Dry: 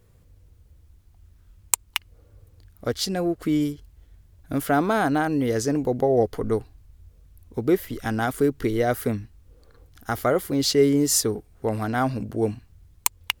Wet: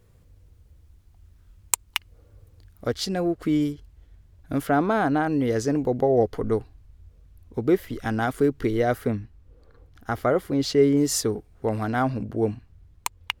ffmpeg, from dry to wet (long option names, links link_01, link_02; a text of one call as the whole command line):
ffmpeg -i in.wav -af "asetnsamples=nb_out_samples=441:pad=0,asendcmd='2.87 lowpass f 5000;4.67 lowpass f 2300;5.27 lowpass f 4300;8.98 lowpass f 2300;10.97 lowpass f 4700;12.02 lowpass f 2600',lowpass=frequency=11000:poles=1" out.wav